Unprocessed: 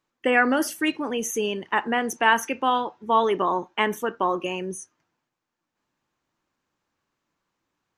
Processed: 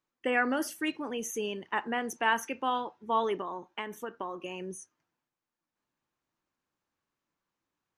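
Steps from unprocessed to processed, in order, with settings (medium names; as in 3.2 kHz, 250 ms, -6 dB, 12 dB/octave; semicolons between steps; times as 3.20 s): 3.34–4.60 s: compression 5:1, threshold -26 dBFS, peak gain reduction 9 dB; trim -8 dB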